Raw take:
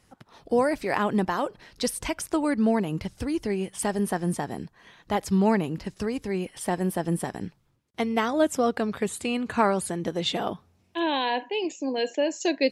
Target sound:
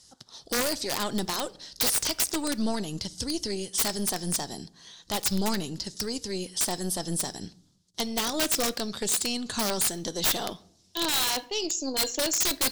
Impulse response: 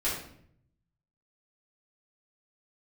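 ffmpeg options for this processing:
-filter_complex "[0:a]lowpass=5400,aeval=exprs='(tanh(6.31*val(0)+0.7)-tanh(0.7))/6.31':c=same,acontrast=46,aexciter=amount=7.7:drive=9.4:freq=3700,aeval=exprs='(mod(3.55*val(0)+1,2)-1)/3.55':c=same,asplit=2[s0][s1];[1:a]atrim=start_sample=2205,asetrate=48510,aresample=44100[s2];[s1][s2]afir=irnorm=-1:irlink=0,volume=0.0631[s3];[s0][s3]amix=inputs=2:normalize=0,volume=0.447"

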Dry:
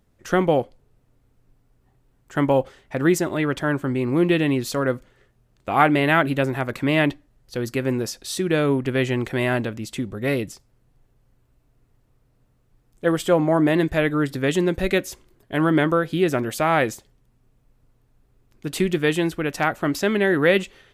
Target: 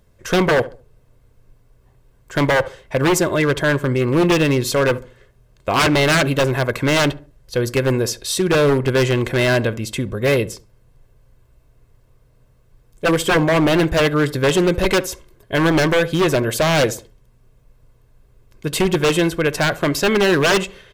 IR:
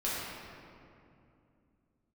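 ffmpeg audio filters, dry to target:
-filter_complex "[0:a]aecho=1:1:1.9:0.45,aeval=exprs='0.158*(abs(mod(val(0)/0.158+3,4)-2)-1)':c=same,asplit=2[s0][s1];[s1]adelay=69,lowpass=f=1200:p=1,volume=0.158,asplit=2[s2][s3];[s3]adelay=69,lowpass=f=1200:p=1,volume=0.35,asplit=2[s4][s5];[s5]adelay=69,lowpass=f=1200:p=1,volume=0.35[s6];[s0][s2][s4][s6]amix=inputs=4:normalize=0,volume=2.11"

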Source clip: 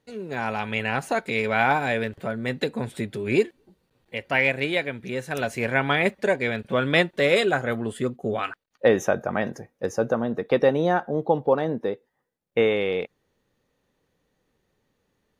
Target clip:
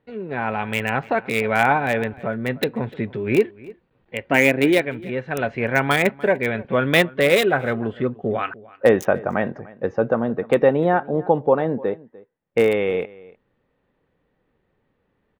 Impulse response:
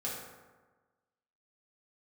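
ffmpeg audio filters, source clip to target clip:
-filter_complex "[0:a]asettb=1/sr,asplit=3[s0][s1][s2];[s0]atrim=end=4.304[s3];[s1]atrim=start=4.3:end=4.81,asetpts=PTS-STARTPTS,afade=t=in:d=0.004:c=qsin,afade=t=out:st=0.506:d=0.004:c=qsin,equalizer=f=300:w=1.3:g=10.5[s4];[s2]atrim=start=4.806[s5];[s3][s4]acrossfade=d=0.004:c1=hsin:c2=qsin[s6];[s6][s5]acrossfade=d=0.004:c1=qsin:c2=hsin,acrossover=split=3100[s7][s8];[s8]acrusher=bits=4:mix=0:aa=0.000001[s9];[s7][s9]amix=inputs=2:normalize=0,asplit=2[s10][s11];[s11]adelay=297.4,volume=0.0891,highshelf=f=4000:g=-6.69[s12];[s10][s12]amix=inputs=2:normalize=0,volume=1.5"

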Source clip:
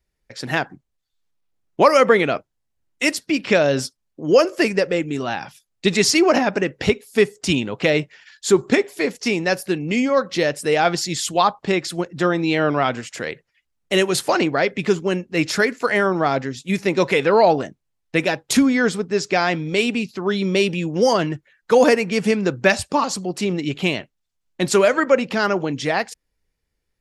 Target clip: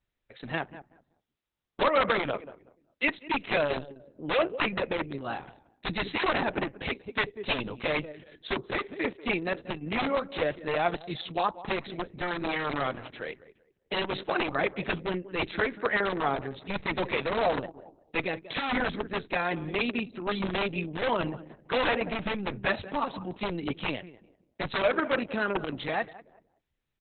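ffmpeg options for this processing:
-filter_complex "[0:a]asplit=3[s0][s1][s2];[s0]afade=t=out:st=5.05:d=0.02[s3];[s1]equalizer=f=2900:w=0.74:g=-3.5,afade=t=in:st=5.05:d=0.02,afade=t=out:st=5.98:d=0.02[s4];[s2]afade=t=in:st=5.98:d=0.02[s5];[s3][s4][s5]amix=inputs=3:normalize=0,asplit=2[s6][s7];[s7]adelay=189,lowpass=f=1200:p=1,volume=0.178,asplit=2[s8][s9];[s9]adelay=189,lowpass=f=1200:p=1,volume=0.29,asplit=2[s10][s11];[s11]adelay=189,lowpass=f=1200:p=1,volume=0.29[s12];[s6][s8][s10][s12]amix=inputs=4:normalize=0,acrossover=split=520|4700[s13][s14][s15];[s13]aeval=exprs='(mod(6.31*val(0)+1,2)-1)/6.31':c=same[s16];[s16][s14][s15]amix=inputs=3:normalize=0,volume=0.376" -ar 48000 -c:a libopus -b:a 6k

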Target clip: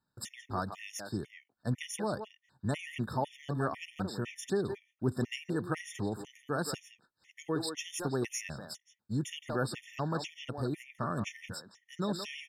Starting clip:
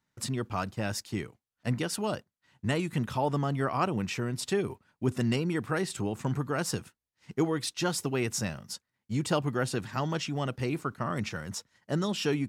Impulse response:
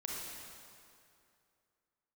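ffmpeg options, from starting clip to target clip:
-filter_complex "[0:a]asplit=2[s0][s1];[s1]adelay=170,highpass=300,lowpass=3400,asoftclip=type=hard:threshold=0.0668,volume=0.501[s2];[s0][s2]amix=inputs=2:normalize=0,afftfilt=real='re*gt(sin(2*PI*2*pts/sr)*(1-2*mod(floor(b*sr/1024/1800),2)),0)':imag='im*gt(sin(2*PI*2*pts/sr)*(1-2*mod(floor(b*sr/1024/1800),2)),0)':win_size=1024:overlap=0.75,volume=0.75"

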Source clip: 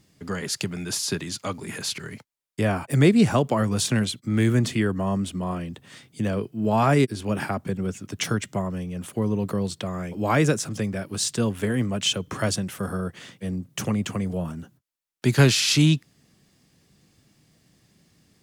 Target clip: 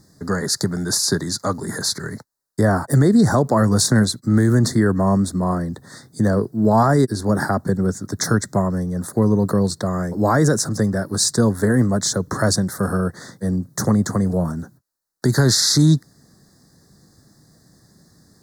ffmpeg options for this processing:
-af "asuperstop=centerf=2700:order=8:qfactor=1.3,alimiter=level_in=4.73:limit=0.891:release=50:level=0:latency=1,volume=0.531"

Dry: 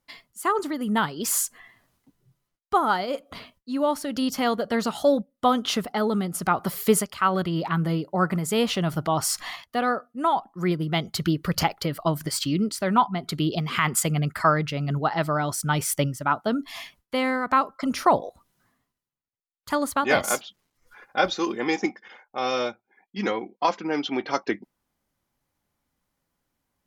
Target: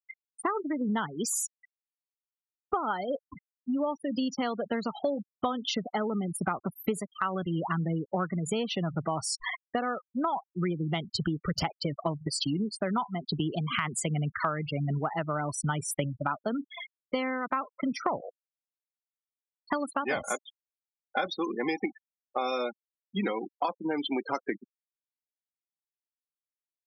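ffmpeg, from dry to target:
-filter_complex "[0:a]acrossover=split=130|6600[s0][s1][s2];[s2]asoftclip=type=tanh:threshold=0.0422[s3];[s0][s1][s3]amix=inputs=3:normalize=0,afftfilt=real='re*gte(hypot(re,im),0.0501)':imag='im*gte(hypot(re,im),0.0501)':win_size=1024:overlap=0.75,acompressor=threshold=0.0178:ratio=6,volume=2.24"

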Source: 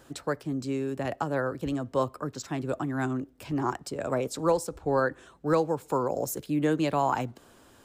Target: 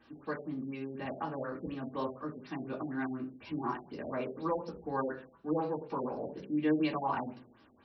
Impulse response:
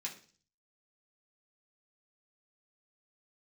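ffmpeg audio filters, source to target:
-filter_complex "[1:a]atrim=start_sample=2205,asetrate=48510,aresample=44100[s0];[0:a][s0]afir=irnorm=-1:irlink=0,afftfilt=real='re*lt(b*sr/1024,780*pow(6100/780,0.5+0.5*sin(2*PI*4.1*pts/sr)))':imag='im*lt(b*sr/1024,780*pow(6100/780,0.5+0.5*sin(2*PI*4.1*pts/sr)))':win_size=1024:overlap=0.75,volume=0.75"

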